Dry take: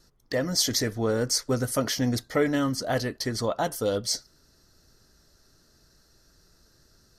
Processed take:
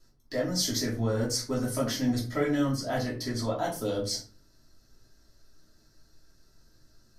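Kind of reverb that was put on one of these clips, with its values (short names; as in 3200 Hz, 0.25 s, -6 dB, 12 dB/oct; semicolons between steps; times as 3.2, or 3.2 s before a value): shoebox room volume 200 m³, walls furnished, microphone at 2.9 m; gain -9.5 dB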